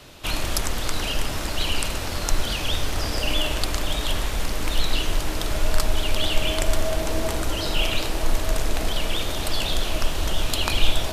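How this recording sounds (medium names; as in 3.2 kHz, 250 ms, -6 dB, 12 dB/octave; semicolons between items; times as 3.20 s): noise floor -28 dBFS; spectral tilt -4.0 dB/octave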